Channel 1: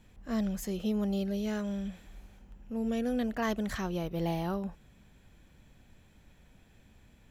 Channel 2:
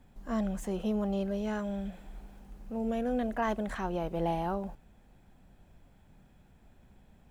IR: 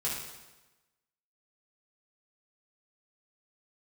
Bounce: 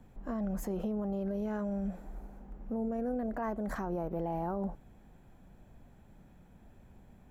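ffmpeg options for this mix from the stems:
-filter_complex "[0:a]highpass=f=100:w=0.5412,highpass=f=100:w=1.3066,equalizer=f=3.5k:t=o:w=2.9:g=-9,volume=-1dB[a];[1:a]lowpass=1.6k,volume=1.5dB,asplit=2[b][c];[c]apad=whole_len=322318[d];[a][d]sidechaincompress=threshold=-33dB:ratio=8:attack=16:release=129[e];[e][b]amix=inputs=2:normalize=0,alimiter=level_in=3.5dB:limit=-24dB:level=0:latency=1:release=54,volume=-3.5dB"

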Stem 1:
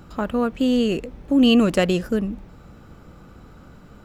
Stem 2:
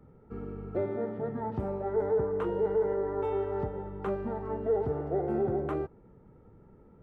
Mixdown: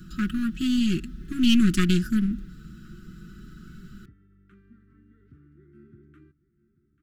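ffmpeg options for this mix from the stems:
-filter_complex "[0:a]equalizer=f=2.2k:w=5:g=-13.5,aecho=1:1:5.4:0.84,volume=-0.5dB[a];[1:a]adelay=450,volume=-16.5dB,asplit=2[b][c];[c]volume=-17.5dB,aecho=0:1:840:1[d];[a][b][d]amix=inputs=3:normalize=0,aeval=exprs='clip(val(0),-1,0.0501)':c=same,asuperstop=centerf=670:order=12:qfactor=0.66"

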